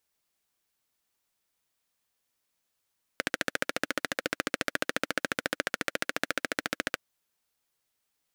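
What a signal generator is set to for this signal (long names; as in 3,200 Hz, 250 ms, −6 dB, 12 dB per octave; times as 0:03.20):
pulse-train model of a single-cylinder engine, steady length 3.79 s, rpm 1,700, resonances 300/520/1,500 Hz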